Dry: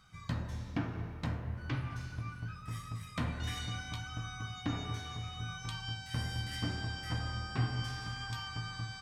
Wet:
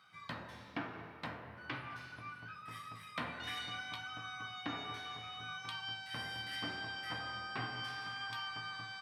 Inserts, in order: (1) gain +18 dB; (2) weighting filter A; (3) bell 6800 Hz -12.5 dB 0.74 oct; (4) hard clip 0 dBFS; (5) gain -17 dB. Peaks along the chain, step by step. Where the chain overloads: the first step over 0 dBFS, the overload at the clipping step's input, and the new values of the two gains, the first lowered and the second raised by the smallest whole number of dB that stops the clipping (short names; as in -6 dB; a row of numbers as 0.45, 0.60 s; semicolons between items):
-3.0, -4.5, -5.5, -5.5, -22.5 dBFS; no overload